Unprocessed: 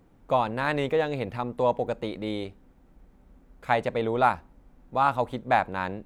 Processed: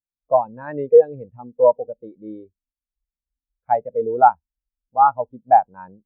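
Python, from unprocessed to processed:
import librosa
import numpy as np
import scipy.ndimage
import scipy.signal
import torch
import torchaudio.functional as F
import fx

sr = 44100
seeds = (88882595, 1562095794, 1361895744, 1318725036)

y = fx.high_shelf(x, sr, hz=6600.0, db=-6.0)
y = fx.spectral_expand(y, sr, expansion=2.5)
y = y * librosa.db_to_amplitude(7.0)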